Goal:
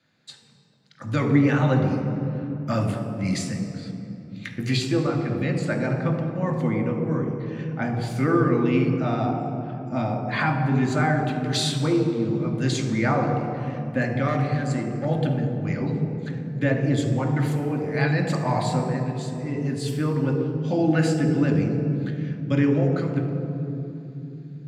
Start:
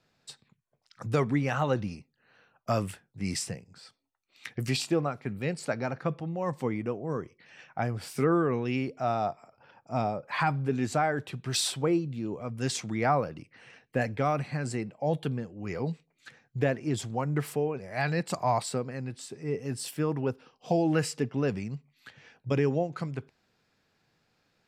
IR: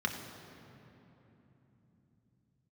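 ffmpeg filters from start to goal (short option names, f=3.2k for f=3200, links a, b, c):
-filter_complex "[0:a]asettb=1/sr,asplit=3[a][b][c];[a]atrim=end=14.284[d];[b]atrim=start=14.28:end=15.05,asetpts=PTS-STARTPTS,afade=t=in:d=0.004:c=qsin,afade=t=out:st=0.766:d=0.004:c=qsin,aeval=exprs='clip(val(0),-1,0.0422)':c=same[e];[c]atrim=start=15.046[f];[d][e]acrossfade=d=0.004:c1=hsin:c2=qsin[g];[g][f]acrossfade=d=0.004:c1=qsin:c2=hsin[h];[1:a]atrim=start_sample=2205,asetrate=52920,aresample=44100[i];[h][i]afir=irnorm=-1:irlink=0"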